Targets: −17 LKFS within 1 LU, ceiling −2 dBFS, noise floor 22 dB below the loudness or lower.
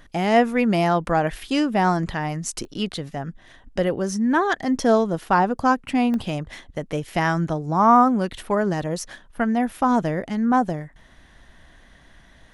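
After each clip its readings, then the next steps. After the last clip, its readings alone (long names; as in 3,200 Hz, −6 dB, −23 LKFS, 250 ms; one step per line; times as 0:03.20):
number of dropouts 2; longest dropout 1.1 ms; integrated loudness −22.0 LKFS; sample peak −4.0 dBFS; target loudness −17.0 LKFS
→ repair the gap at 0:02.65/0:06.14, 1.1 ms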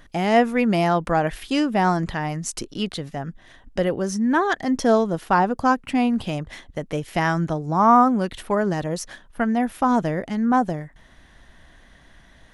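number of dropouts 0; integrated loudness −22.0 LKFS; sample peak −4.0 dBFS; target loudness −17.0 LKFS
→ level +5 dB
brickwall limiter −2 dBFS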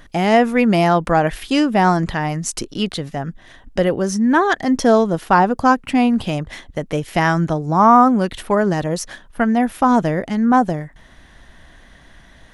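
integrated loudness −17.0 LKFS; sample peak −2.0 dBFS; background noise floor −47 dBFS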